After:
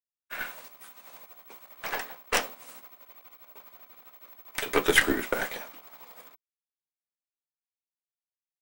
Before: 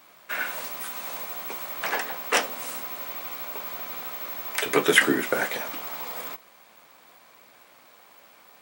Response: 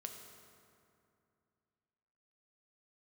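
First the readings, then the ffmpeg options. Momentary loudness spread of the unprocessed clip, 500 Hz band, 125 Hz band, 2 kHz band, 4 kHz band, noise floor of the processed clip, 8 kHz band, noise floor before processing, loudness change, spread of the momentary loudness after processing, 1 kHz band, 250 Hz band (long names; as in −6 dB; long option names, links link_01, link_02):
12 LU, −4.0 dB, −3.0 dB, −4.0 dB, −4.0 dB, below −85 dBFS, −4.0 dB, −55 dBFS, −1.5 dB, 25 LU, −5.0 dB, −4.0 dB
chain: -af "anlmdn=1,agate=range=-33dB:threshold=-27dB:ratio=3:detection=peak,aeval=exprs='0.794*(cos(1*acos(clip(val(0)/0.794,-1,1)))-cos(1*PI/2))+0.158*(cos(5*acos(clip(val(0)/0.794,-1,1)))-cos(5*PI/2))+0.126*(cos(7*acos(clip(val(0)/0.794,-1,1)))-cos(7*PI/2))+0.0631*(cos(8*acos(clip(val(0)/0.794,-1,1)))-cos(8*PI/2))':channel_layout=same,volume=-4.5dB"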